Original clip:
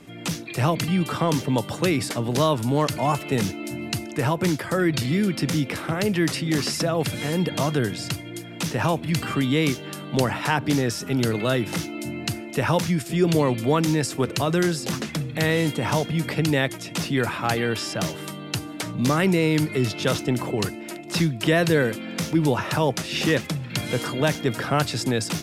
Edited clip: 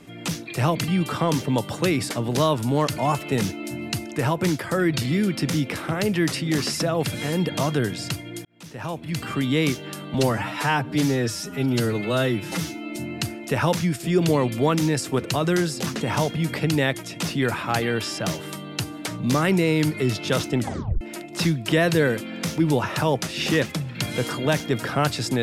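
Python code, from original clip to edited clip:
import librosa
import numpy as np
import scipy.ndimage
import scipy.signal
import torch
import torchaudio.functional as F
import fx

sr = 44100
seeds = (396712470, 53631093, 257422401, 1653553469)

y = fx.edit(x, sr, fx.fade_in_span(start_s=8.45, length_s=1.13),
    fx.stretch_span(start_s=10.14, length_s=1.88, factor=1.5),
    fx.cut(start_s=15.07, length_s=0.69),
    fx.tape_stop(start_s=20.34, length_s=0.42), tone=tone)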